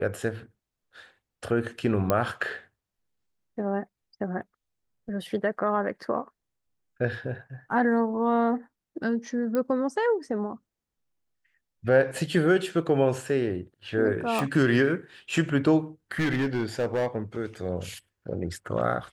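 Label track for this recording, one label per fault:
2.100000	2.100000	pop -10 dBFS
9.550000	9.550000	pop -16 dBFS
14.390000	14.390000	pop
16.190000	17.070000	clipped -21.5 dBFS

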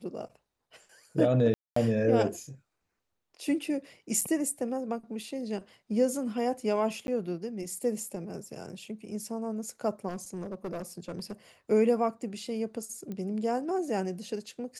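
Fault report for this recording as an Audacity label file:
1.540000	1.760000	dropout 224 ms
4.210000	4.220000	dropout 5.5 ms
7.070000	7.080000	dropout 11 ms
10.080000	11.330000	clipped -31 dBFS
13.120000	13.120000	pop -26 dBFS

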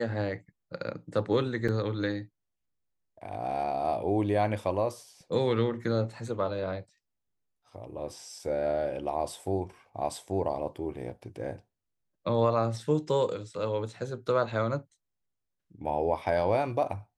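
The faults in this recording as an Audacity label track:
1.680000	1.690000	dropout 5.3 ms

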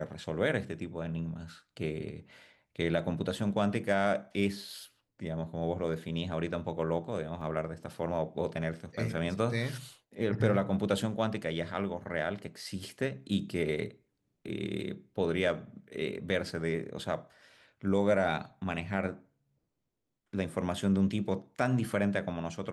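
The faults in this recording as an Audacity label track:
7.410000	7.410000	dropout 4 ms

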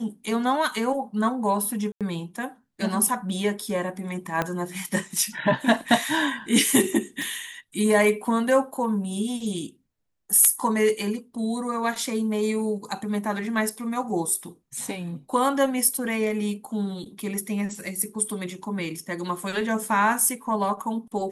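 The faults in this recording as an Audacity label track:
1.920000	2.010000	dropout 87 ms
4.420000	4.420000	pop -11 dBFS
7.220000	7.220000	pop

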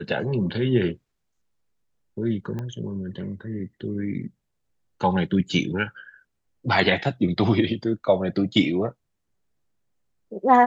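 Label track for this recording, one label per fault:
2.590000	2.590000	pop -20 dBFS

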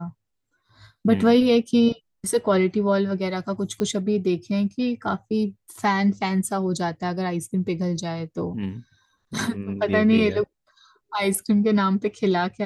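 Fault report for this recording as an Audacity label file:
3.800000	3.800000	pop -14 dBFS

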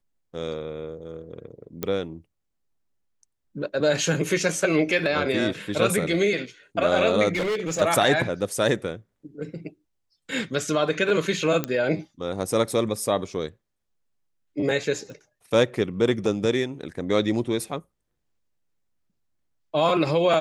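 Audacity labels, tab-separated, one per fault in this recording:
1.830000	1.830000	pop -13 dBFS
7.320000	7.820000	clipped -22 dBFS
11.640000	11.640000	pop -10 dBFS
15.100000	15.100000	pop

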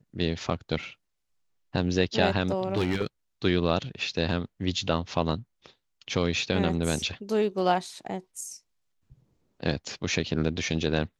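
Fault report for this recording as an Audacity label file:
2.740000	3.060000	clipped -21 dBFS

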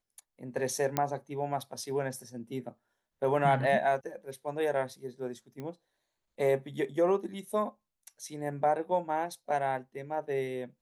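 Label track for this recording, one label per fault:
0.970000	0.970000	pop -12 dBFS
5.600000	5.600000	pop -28 dBFS

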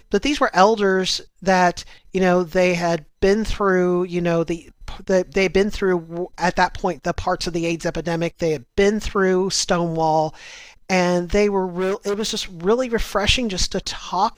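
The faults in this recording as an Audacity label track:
11.770000	12.430000	clipped -18.5 dBFS

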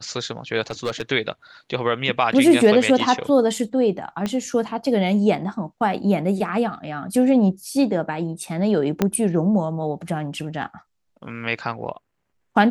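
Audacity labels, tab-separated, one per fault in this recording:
0.610000	1.020000	clipped -19 dBFS
4.260000	4.260000	pop -12 dBFS
9.020000	9.020000	pop -5 dBFS

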